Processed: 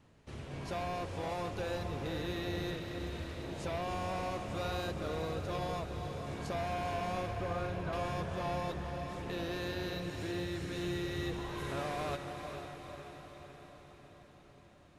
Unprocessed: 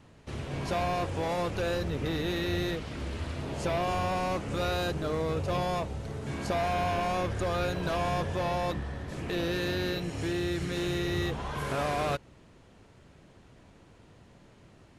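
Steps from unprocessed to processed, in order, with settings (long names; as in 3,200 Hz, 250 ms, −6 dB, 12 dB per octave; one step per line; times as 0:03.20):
0:07.31–0:07.93: low-pass filter 2,200 Hz 12 dB per octave
feedback delay with all-pass diffusion 460 ms, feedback 61%, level −6.5 dB
level −8 dB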